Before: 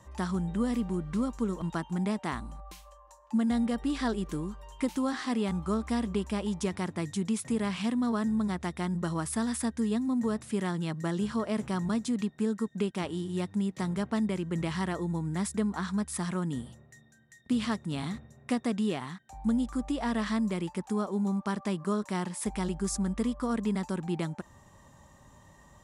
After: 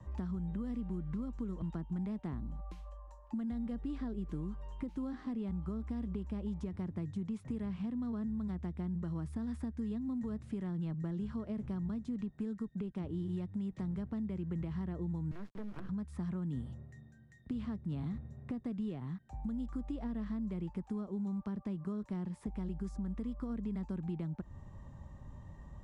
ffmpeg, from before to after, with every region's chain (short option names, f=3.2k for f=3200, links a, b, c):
-filter_complex "[0:a]asettb=1/sr,asplit=3[a][b][c];[a]atrim=end=15.314[d];[b]atrim=start=15.31:end=15.89,asetpts=PTS-STARTPTS,afade=t=in:d=0.004:c=qsin,afade=t=out:st=0.576:d=0.004:c=qsin,highpass=f=220:w=0.5412,highpass=f=220:w=1.3066,equalizer=f=230:t=q:w=4:g=-9,equalizer=f=470:t=q:w=4:g=-6,equalizer=f=820:t=q:w=4:g=-9,equalizer=f=1.6k:t=q:w=4:g=6,equalizer=f=2.4k:t=q:w=4:g=-9,equalizer=f=3.5k:t=q:w=4:g=-5,lowpass=f=4.4k:w=0.5412,lowpass=f=4.4k:w=1.3066,acrusher=bits=5:dc=4:mix=0:aa=0.000001[e];[c]atrim=start=15.886[f];[d][e]acrossfade=d=0.004:c1=hsin:c2=qsin[g];[g][f]acrossfade=d=0.004:c1=qsin:c2=hsin,aemphasis=mode=reproduction:type=riaa,alimiter=limit=-19.5dB:level=0:latency=1:release=435,acrossover=split=90|580|1500[h][i][j][k];[h]acompressor=threshold=-42dB:ratio=4[l];[i]acompressor=threshold=-33dB:ratio=4[m];[j]acompressor=threshold=-54dB:ratio=4[n];[k]acompressor=threshold=-59dB:ratio=4[o];[l][m][n][o]amix=inputs=4:normalize=0,volume=-4.5dB"